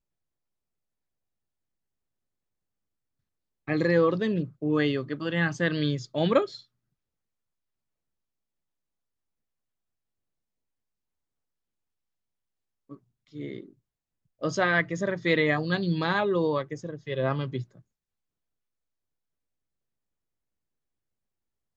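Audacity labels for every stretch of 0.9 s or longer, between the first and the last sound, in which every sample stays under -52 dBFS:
6.640000	12.890000	silence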